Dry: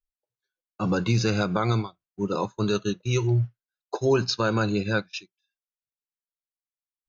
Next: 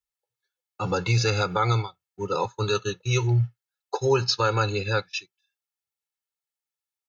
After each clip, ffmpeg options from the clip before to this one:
ffmpeg -i in.wav -af "highpass=87,equalizer=frequency=330:width_type=o:width=0.78:gain=-10,aecho=1:1:2.3:0.8,volume=1.5dB" out.wav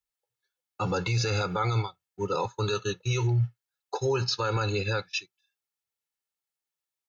ffmpeg -i in.wav -af "alimiter=limit=-18.5dB:level=0:latency=1:release=26" out.wav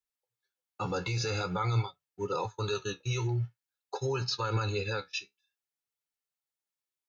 ffmpeg -i in.wav -af "flanger=delay=6.7:depth=8.1:regen=52:speed=0.48:shape=sinusoidal" out.wav

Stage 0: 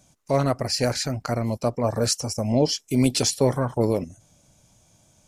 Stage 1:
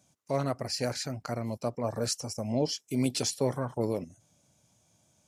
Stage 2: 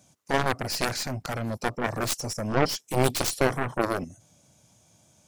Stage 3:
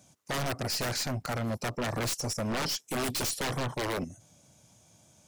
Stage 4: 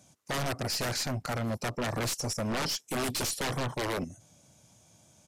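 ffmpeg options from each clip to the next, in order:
ffmpeg -i in.wav -af "highpass=90,volume=-8dB" out.wav
ffmpeg -i in.wav -af "aeval=exprs='0.188*(cos(1*acos(clip(val(0)/0.188,-1,1)))-cos(1*PI/2))+0.0299*(cos(3*acos(clip(val(0)/0.188,-1,1)))-cos(3*PI/2))+0.0188*(cos(5*acos(clip(val(0)/0.188,-1,1)))-cos(5*PI/2))+0.0168*(cos(6*acos(clip(val(0)/0.188,-1,1)))-cos(6*PI/2))+0.0596*(cos(7*acos(clip(val(0)/0.188,-1,1)))-cos(7*PI/2))':channel_layout=same,volume=5.5dB" out.wav
ffmpeg -i in.wav -af "aeval=exprs='0.0501*(abs(mod(val(0)/0.0501+3,4)-2)-1)':channel_layout=same" out.wav
ffmpeg -i in.wav -af "aresample=32000,aresample=44100" out.wav

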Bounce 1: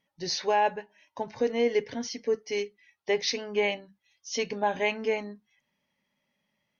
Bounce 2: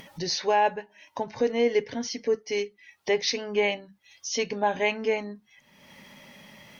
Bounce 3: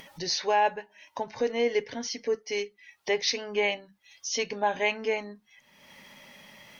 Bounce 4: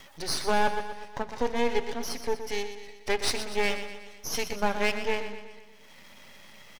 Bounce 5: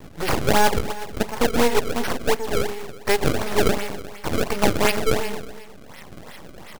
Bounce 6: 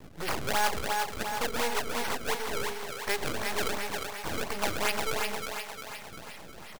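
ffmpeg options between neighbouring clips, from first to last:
ffmpeg -i in.wav -af "acompressor=mode=upward:threshold=-30dB:ratio=2.5,volume=2dB" out.wav
ffmpeg -i in.wav -af "equalizer=frequency=140:width=0.36:gain=-6" out.wav
ffmpeg -i in.wav -af "aeval=exprs='max(val(0),0)':channel_layout=same,aecho=1:1:122|244|366|488|610|732:0.316|0.171|0.0922|0.0498|0.0269|0.0145,volume=3dB" out.wav
ffmpeg -i in.wav -filter_complex "[0:a]asplit=2[link_01][link_02];[link_02]alimiter=limit=-22dB:level=0:latency=1:release=301,volume=-2.5dB[link_03];[link_01][link_03]amix=inputs=2:normalize=0,acrusher=samples=28:mix=1:aa=0.000001:lfo=1:lforange=44.8:lforate=2.8,volume=5.5dB" out.wav
ffmpeg -i in.wav -filter_complex "[0:a]acrossover=split=620[link_01][link_02];[link_01]asoftclip=type=tanh:threshold=-21.5dB[link_03];[link_02]aecho=1:1:354|708|1062|1416|1770|2124|2478|2832:0.631|0.353|0.198|0.111|0.0621|0.0347|0.0195|0.0109[link_04];[link_03][link_04]amix=inputs=2:normalize=0,volume=-7dB" out.wav

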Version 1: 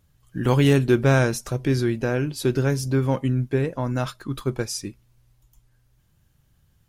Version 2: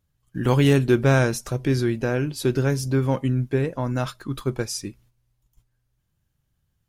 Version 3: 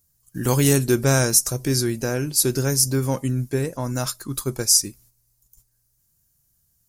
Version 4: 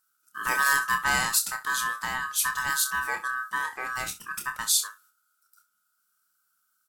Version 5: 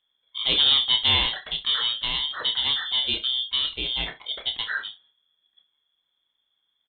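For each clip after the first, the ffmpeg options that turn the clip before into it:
ffmpeg -i in.wav -af "agate=range=-10dB:threshold=-54dB:ratio=16:detection=peak" out.wav
ffmpeg -i in.wav -af "aexciter=amount=7.4:drive=4.8:freq=4700,volume=-1dB" out.wav
ffmpeg -i in.wav -af "aeval=exprs='val(0)*sin(2*PI*1400*n/s)':channel_layout=same,aecho=1:1:28|65:0.447|0.168,volume=-4.5dB" out.wav
ffmpeg -i in.wav -af "afftfilt=real='real(if(lt(b,920),b+92*(1-2*mod(floor(b/92),2)),b),0)':imag='imag(if(lt(b,920),b+92*(1-2*mod(floor(b/92),2)),b),0)':win_size=2048:overlap=0.75,aresample=8000,aresample=44100,volume=5dB" out.wav

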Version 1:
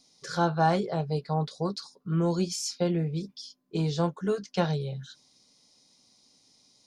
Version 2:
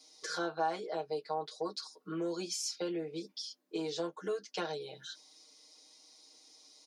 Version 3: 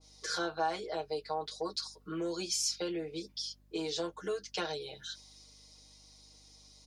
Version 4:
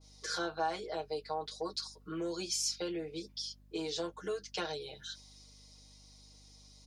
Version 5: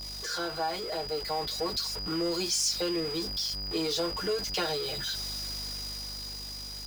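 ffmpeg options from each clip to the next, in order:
ffmpeg -i in.wav -af "highpass=frequency=300:width=0.5412,highpass=frequency=300:width=1.3066,aecho=1:1:6.4:0.98,acompressor=threshold=-40dB:ratio=2" out.wav
ffmpeg -i in.wav -af "aeval=exprs='val(0)+0.000708*(sin(2*PI*50*n/s)+sin(2*PI*2*50*n/s)/2+sin(2*PI*3*50*n/s)/3+sin(2*PI*4*50*n/s)/4+sin(2*PI*5*50*n/s)/5)':channel_layout=same,adynamicequalizer=threshold=0.00355:dfrequency=1700:dqfactor=0.7:tfrequency=1700:tqfactor=0.7:attack=5:release=100:ratio=0.375:range=2.5:mode=boostabove:tftype=highshelf" out.wav
ffmpeg -i in.wav -af "aeval=exprs='val(0)+0.000562*(sin(2*PI*50*n/s)+sin(2*PI*2*50*n/s)/2+sin(2*PI*3*50*n/s)/3+sin(2*PI*4*50*n/s)/4+sin(2*PI*5*50*n/s)/5)':channel_layout=same,volume=-1.5dB" out.wav
ffmpeg -i in.wav -af "aeval=exprs='val(0)+0.5*0.0119*sgn(val(0))':channel_layout=same,aeval=exprs='val(0)+0.0112*sin(2*PI*4900*n/s)':channel_layout=same,dynaudnorm=framelen=230:gausssize=11:maxgain=4dB" out.wav

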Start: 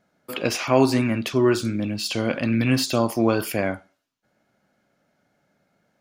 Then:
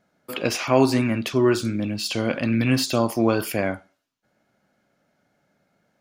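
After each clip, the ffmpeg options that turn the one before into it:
ffmpeg -i in.wav -af anull out.wav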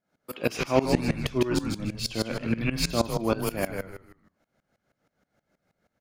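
ffmpeg -i in.wav -filter_complex "[0:a]asplit=2[link_01][link_02];[link_02]asplit=4[link_03][link_04][link_05][link_06];[link_03]adelay=150,afreqshift=-91,volume=-4.5dB[link_07];[link_04]adelay=300,afreqshift=-182,volume=-14.7dB[link_08];[link_05]adelay=450,afreqshift=-273,volume=-24.8dB[link_09];[link_06]adelay=600,afreqshift=-364,volume=-35dB[link_10];[link_07][link_08][link_09][link_10]amix=inputs=4:normalize=0[link_11];[link_01][link_11]amix=inputs=2:normalize=0,aeval=exprs='val(0)*pow(10,-20*if(lt(mod(-6.3*n/s,1),2*abs(-6.3)/1000),1-mod(-6.3*n/s,1)/(2*abs(-6.3)/1000),(mod(-6.3*n/s,1)-2*abs(-6.3)/1000)/(1-2*abs(-6.3)/1000))/20)':channel_layout=same" out.wav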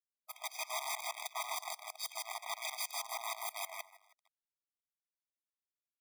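ffmpeg -i in.wav -af "acrusher=bits=6:dc=4:mix=0:aa=0.000001,aeval=exprs='(mod(14.1*val(0)+1,2)-1)/14.1':channel_layout=same,afftfilt=real='re*eq(mod(floor(b*sr/1024/640),2),1)':imag='im*eq(mod(floor(b*sr/1024/640),2),1)':win_size=1024:overlap=0.75,volume=-5.5dB" out.wav

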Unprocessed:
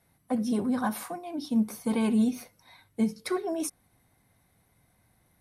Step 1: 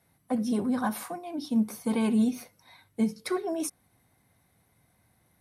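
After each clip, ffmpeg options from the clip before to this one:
ffmpeg -i in.wav -af "highpass=58" out.wav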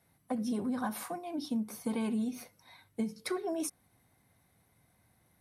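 ffmpeg -i in.wav -af "acompressor=threshold=-28dB:ratio=6,volume=-2dB" out.wav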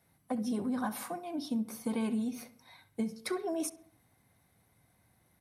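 ffmpeg -i in.wav -filter_complex "[0:a]asplit=2[link_01][link_02];[link_02]adelay=67,lowpass=frequency=3000:poles=1,volume=-16.5dB,asplit=2[link_03][link_04];[link_04]adelay=67,lowpass=frequency=3000:poles=1,volume=0.54,asplit=2[link_05][link_06];[link_06]adelay=67,lowpass=frequency=3000:poles=1,volume=0.54,asplit=2[link_07][link_08];[link_08]adelay=67,lowpass=frequency=3000:poles=1,volume=0.54,asplit=2[link_09][link_10];[link_10]adelay=67,lowpass=frequency=3000:poles=1,volume=0.54[link_11];[link_01][link_03][link_05][link_07][link_09][link_11]amix=inputs=6:normalize=0" out.wav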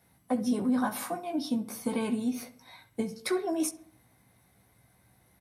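ffmpeg -i in.wav -filter_complex "[0:a]asplit=2[link_01][link_02];[link_02]adelay=16,volume=-6dB[link_03];[link_01][link_03]amix=inputs=2:normalize=0,volume=4dB" out.wav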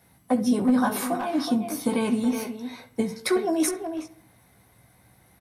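ffmpeg -i in.wav -filter_complex "[0:a]asplit=2[link_01][link_02];[link_02]adelay=370,highpass=300,lowpass=3400,asoftclip=type=hard:threshold=-25.5dB,volume=-6dB[link_03];[link_01][link_03]amix=inputs=2:normalize=0,volume=6dB" out.wav

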